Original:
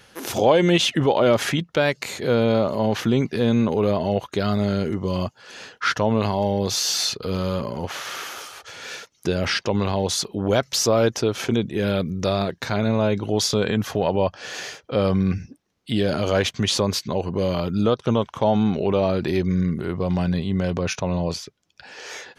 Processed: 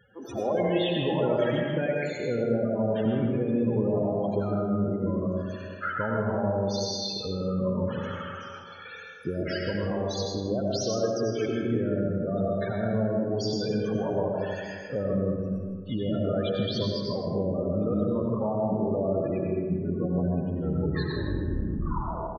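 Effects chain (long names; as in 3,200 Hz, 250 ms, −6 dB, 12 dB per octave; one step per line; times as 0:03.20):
turntable brake at the end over 1.97 s
downward compressor 3 to 1, threshold −22 dBFS, peak gain reduction 8.5 dB
spectral peaks only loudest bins 16
single-tap delay 158 ms −11 dB
convolution reverb RT60 1.9 s, pre-delay 55 ms, DRR −1.5 dB
level −5 dB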